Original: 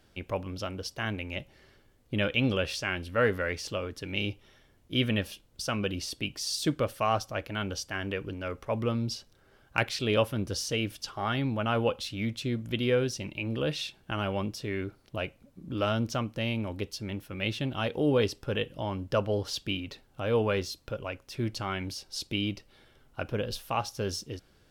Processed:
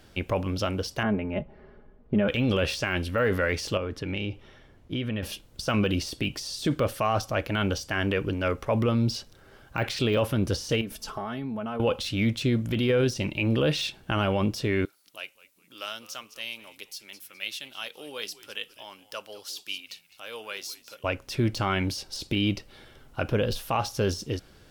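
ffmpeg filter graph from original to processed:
-filter_complex "[0:a]asettb=1/sr,asplit=3[a][b][c];[a]atrim=end=1.034[d];[b]atrim=start=1.03:end=2.28,asetpts=PTS-STARTPTS,afade=t=in:d=0.004:c=qsin,afade=t=out:st=1.246:d=0.004:c=qsin,lowpass=1.1k,aecho=1:1:4.8:0.62,atrim=end_sample=55125[e];[c]atrim=start=2.276[f];[d][e]acrossfade=d=0.004:c1=hsin:c2=qsin[g];[g][f]acrossfade=d=0.004:c1=qsin:c2=hsin,asettb=1/sr,asplit=3[h][i][j];[h]atrim=end=3.774[k];[i]atrim=start=3.77:end=5.23,asetpts=PTS-STARTPTS,afade=t=in:d=0.004:c=qsin,afade=t=out:st=1.456:d=0.004:c=qsin,lowpass=f=2.4k:p=1,acompressor=threshold=-35dB:ratio=6:attack=3.2:release=140:knee=1:detection=peak[l];[j]atrim=start=5.226[m];[k][l]acrossfade=d=0.004:c1=hsin:c2=qsin[n];[n][m]acrossfade=d=0.004:c1=qsin:c2=hsin,asettb=1/sr,asplit=3[o][p][q];[o]atrim=end=10.814[r];[p]atrim=start=10.81:end=11.8,asetpts=PTS-STARTPTS,afade=t=in:d=0.004:c=qsin,afade=t=out:st=0.986:d=0.004:c=qsin,equalizer=f=3.3k:t=o:w=2:g=-8,aecho=1:1:4.6:0.64,atrim=end_sample=43659,acompressor=threshold=-37dB:ratio=16:attack=3.2:release=140:knee=1:detection=peak[s];[q]atrim=start=11.796[t];[r][s]acrossfade=d=0.004:c1=hsin:c2=qsin[u];[u][t]acrossfade=d=0.004:c1=qsin:c2=hsin,asettb=1/sr,asplit=3[v][w][x];[v]atrim=end=14.854[y];[w]atrim=start=14.85:end=21.04,asetpts=PTS-STARTPTS,afade=t=in:d=0.004:c=qsin,afade=t=out:st=6.186:d=0.004:c=qsin,highpass=140,aderivative,asplit=4[z][aa][ab][ac];[aa]adelay=206,afreqshift=-100,volume=-18.5dB[ad];[ab]adelay=412,afreqshift=-200,volume=-27.9dB[ae];[ac]adelay=618,afreqshift=-300,volume=-37.2dB[af];[z][ad][ae][af]amix=inputs=4:normalize=0,atrim=end_sample=272979[ag];[x]atrim=start=21.036[ah];[y][ag]acrossfade=d=0.004:c1=hsin:c2=qsin[ai];[ai][ah]acrossfade=d=0.004:c1=qsin:c2=hsin,deesser=1,alimiter=limit=-24dB:level=0:latency=1:release=23,volume=8.5dB"

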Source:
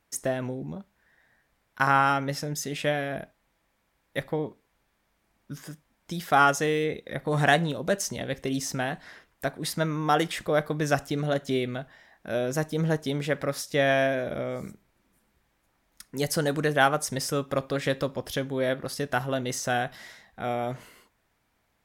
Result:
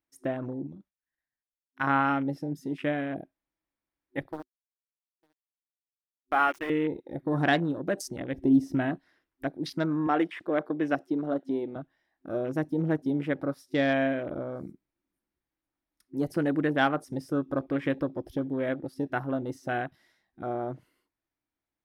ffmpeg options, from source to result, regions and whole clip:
-filter_complex "[0:a]asettb=1/sr,asplit=3[a][b][c];[a]atrim=end=0.674[d];[b]atrim=start=0.67:end=1.84,asetpts=PTS-STARTPTS,afade=t=in:d=0.004:c=qsin,afade=t=out:st=1.166:d=0.004:c=qsin,agate=range=-33dB:threshold=-59dB:ratio=3:release=100:detection=peak,equalizer=f=370:w=0.44:g=-7[e];[c]atrim=start=1.836[f];[d][e]acrossfade=d=0.004:c1=hsin:c2=qsin[g];[g][f]acrossfade=d=0.004:c1=qsin:c2=hsin,asettb=1/sr,asplit=3[h][i][j];[h]atrim=end=4.324[k];[i]atrim=start=4.32:end=6.7,asetpts=PTS-STARTPTS,afade=t=in:d=0.004:c=qsin,afade=t=out:st=2.376:d=0.004:c=qsin,highpass=500,aeval=exprs='val(0)*gte(abs(val(0)),0.0398)':c=same,aecho=1:1:903:0.119,atrim=end_sample=104958[l];[j]atrim=start=6.696[m];[k][l]acrossfade=d=0.004:c1=hsin:c2=qsin[n];[n][m]acrossfade=d=0.004:c1=qsin:c2=hsin,asettb=1/sr,asplit=3[o][p][q];[o]atrim=end=8.344[r];[p]atrim=start=8.34:end=8.98,asetpts=PTS-STARTPTS,afade=t=in:d=0.004:c=qsin,afade=t=out:st=0.636:d=0.004:c=qsin,equalizer=f=120:w=0.55:g=8,aecho=1:1:3.1:0.38,atrim=end_sample=28224[s];[q]atrim=start=8.976[t];[r][s]acrossfade=d=0.004:c1=hsin:c2=qsin[u];[u][t]acrossfade=d=0.004:c1=qsin:c2=hsin,asettb=1/sr,asplit=3[v][w][x];[v]atrim=end=10.074[y];[w]atrim=start=10.07:end=11.76,asetpts=PTS-STARTPTS,afade=t=in:d=0.004:c=qsin,afade=t=out:st=1.686:d=0.004:c=qsin,highpass=240,highshelf=f=8.5k:g=-9.5[z];[x]atrim=start=11.756[aa];[y][z]acrossfade=d=0.004:c1=hsin:c2=qsin[ab];[ab][aa]acrossfade=d=0.004:c1=qsin:c2=hsin,afwtdn=0.0178,superequalizer=6b=2.82:15b=0.562,volume=-4dB"

